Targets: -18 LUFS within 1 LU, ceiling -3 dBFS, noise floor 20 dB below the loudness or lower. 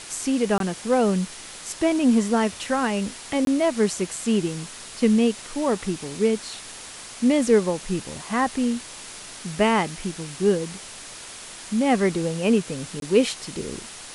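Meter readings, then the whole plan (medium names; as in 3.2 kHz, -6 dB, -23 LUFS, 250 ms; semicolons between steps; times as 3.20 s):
dropouts 3; longest dropout 22 ms; noise floor -40 dBFS; noise floor target -44 dBFS; loudness -23.5 LUFS; peak level -6.0 dBFS; loudness target -18.0 LUFS
-> interpolate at 0.58/3.45/13.00 s, 22 ms; noise print and reduce 6 dB; trim +5.5 dB; peak limiter -3 dBFS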